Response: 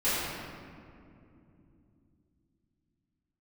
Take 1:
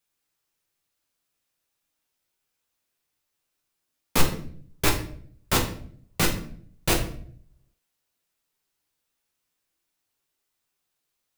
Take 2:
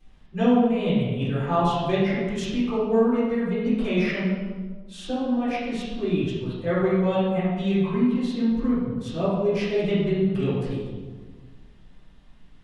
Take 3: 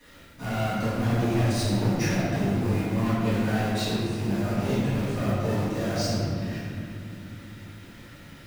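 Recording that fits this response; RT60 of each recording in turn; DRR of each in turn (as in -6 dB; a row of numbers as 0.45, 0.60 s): 3; 0.55 s, 1.5 s, not exponential; 1.0, -14.0, -15.0 dB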